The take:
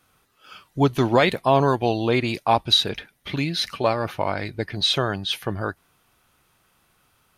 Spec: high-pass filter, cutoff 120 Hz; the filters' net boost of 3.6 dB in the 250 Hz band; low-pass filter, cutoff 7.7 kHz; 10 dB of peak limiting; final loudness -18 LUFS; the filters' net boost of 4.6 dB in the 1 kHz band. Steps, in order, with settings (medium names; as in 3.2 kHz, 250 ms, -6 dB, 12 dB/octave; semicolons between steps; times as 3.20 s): high-pass 120 Hz; low-pass 7.7 kHz; peaking EQ 250 Hz +4.5 dB; peaking EQ 1 kHz +5.5 dB; trim +5.5 dB; peak limiter -5 dBFS